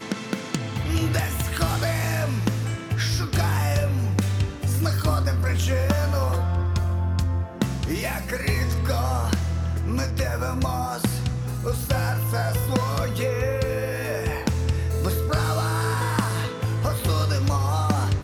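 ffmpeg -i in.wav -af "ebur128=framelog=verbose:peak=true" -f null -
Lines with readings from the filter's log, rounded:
Integrated loudness:
  I:         -24.6 LUFS
  Threshold: -34.5 LUFS
Loudness range:
  LRA:         2.0 LU
  Threshold: -44.6 LUFS
  LRA low:   -25.4 LUFS
  LRA high:  -23.4 LUFS
True peak:
  Peak:      -11.3 dBFS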